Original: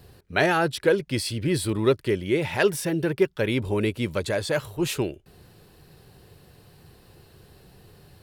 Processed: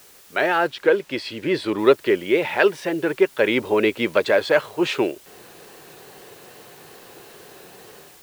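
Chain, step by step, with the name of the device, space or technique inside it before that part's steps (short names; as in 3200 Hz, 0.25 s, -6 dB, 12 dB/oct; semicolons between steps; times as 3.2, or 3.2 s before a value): dictaphone (BPF 370–3200 Hz; AGC gain up to 14 dB; wow and flutter; white noise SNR 27 dB); 0.67–1.79 high shelf 8000 Hz -8.5 dB; gain -1 dB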